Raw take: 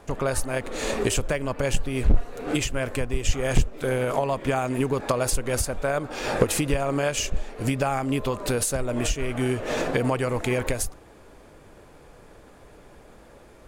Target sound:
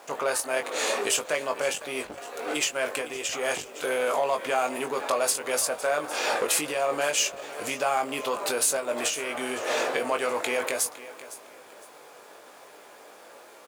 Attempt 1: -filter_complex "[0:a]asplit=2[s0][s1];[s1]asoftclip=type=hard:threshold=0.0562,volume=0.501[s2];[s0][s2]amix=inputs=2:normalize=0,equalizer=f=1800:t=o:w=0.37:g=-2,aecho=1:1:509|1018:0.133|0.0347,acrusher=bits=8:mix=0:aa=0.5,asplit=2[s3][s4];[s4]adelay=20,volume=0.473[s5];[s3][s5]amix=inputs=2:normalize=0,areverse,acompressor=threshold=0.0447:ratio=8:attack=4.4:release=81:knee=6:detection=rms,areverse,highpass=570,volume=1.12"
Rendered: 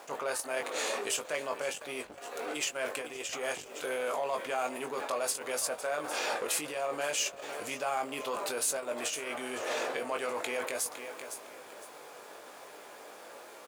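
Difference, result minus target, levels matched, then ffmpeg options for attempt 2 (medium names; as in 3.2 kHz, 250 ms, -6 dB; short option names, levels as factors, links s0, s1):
compression: peak gain reduction +9 dB
-filter_complex "[0:a]asplit=2[s0][s1];[s1]asoftclip=type=hard:threshold=0.0562,volume=0.501[s2];[s0][s2]amix=inputs=2:normalize=0,equalizer=f=1800:t=o:w=0.37:g=-2,aecho=1:1:509|1018:0.133|0.0347,acrusher=bits=8:mix=0:aa=0.5,asplit=2[s3][s4];[s4]adelay=20,volume=0.473[s5];[s3][s5]amix=inputs=2:normalize=0,areverse,acompressor=threshold=0.15:ratio=8:attack=4.4:release=81:knee=6:detection=rms,areverse,highpass=570,volume=1.12"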